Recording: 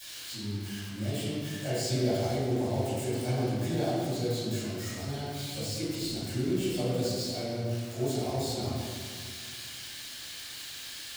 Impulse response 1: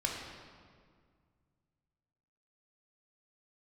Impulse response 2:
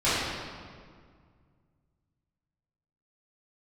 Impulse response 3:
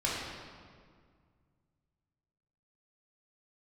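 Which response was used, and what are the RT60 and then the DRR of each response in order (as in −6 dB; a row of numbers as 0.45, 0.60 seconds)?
2; 1.9, 1.9, 1.9 seconds; −1.5, −14.0, −6.5 decibels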